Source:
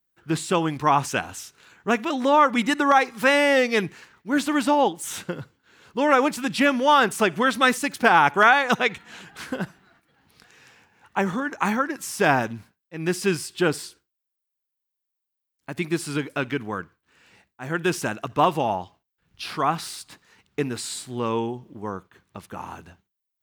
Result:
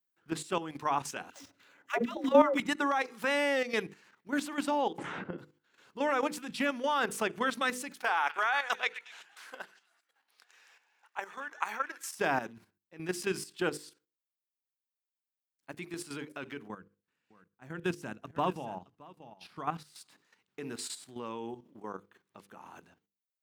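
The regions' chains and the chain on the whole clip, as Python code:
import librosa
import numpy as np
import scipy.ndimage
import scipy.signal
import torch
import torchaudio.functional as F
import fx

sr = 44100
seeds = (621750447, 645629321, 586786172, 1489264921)

y = fx.chain(x, sr, fx.median_filter(points=5),
    fx.small_body(hz=(280.0, 560.0, 2000.0), ring_ms=60, db=10),
    fx.dispersion(late='lows', ms=137.0, hz=520.0), at=(1.3, 2.6))
y = fx.chain(y, sr, fx.lowpass(hz=2100.0, slope=12),
    fx.low_shelf(hz=350.0, db=9.0),
    fx.band_squash(depth_pct=100), at=(4.98, 5.38))
y = fx.chain(y, sr, fx.highpass(hz=660.0, slope=12),
    fx.echo_stepped(ms=121, hz=2100.0, octaves=0.7, feedback_pct=70, wet_db=-11), at=(7.97, 12.15))
y = fx.chain(y, sr, fx.bass_treble(bass_db=10, treble_db=-1),
    fx.echo_single(ms=623, db=-12.0),
    fx.upward_expand(threshold_db=-36.0, expansion=1.5), at=(16.68, 19.96))
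y = scipy.signal.sosfilt(scipy.signal.butter(2, 180.0, 'highpass', fs=sr, output='sos'), y)
y = fx.hum_notches(y, sr, base_hz=50, count=10)
y = fx.level_steps(y, sr, step_db=11)
y = y * librosa.db_to_amplitude(-6.5)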